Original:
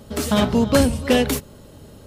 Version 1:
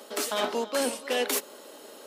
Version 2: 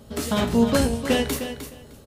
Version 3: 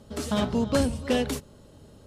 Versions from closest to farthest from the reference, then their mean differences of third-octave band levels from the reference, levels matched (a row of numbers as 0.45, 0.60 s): 3, 2, 1; 1.0, 4.0, 10.5 dB